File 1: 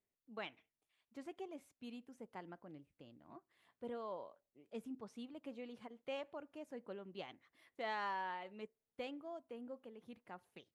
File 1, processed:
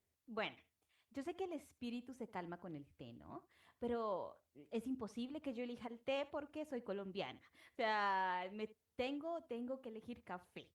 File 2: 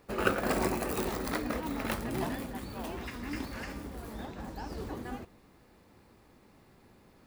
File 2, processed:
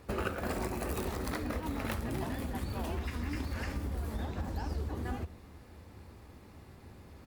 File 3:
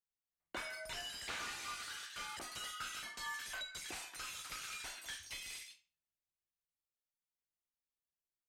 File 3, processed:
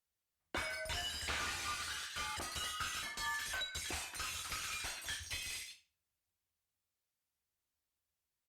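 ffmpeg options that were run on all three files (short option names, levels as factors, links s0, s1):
-filter_complex "[0:a]equalizer=f=77:w=1.9:g=15,acompressor=threshold=0.0158:ratio=6,asplit=2[s0][s1];[s1]aecho=0:1:73:0.1[s2];[s0][s2]amix=inputs=2:normalize=0,volume=1.58" -ar 48000 -c:a libopus -b:a 64k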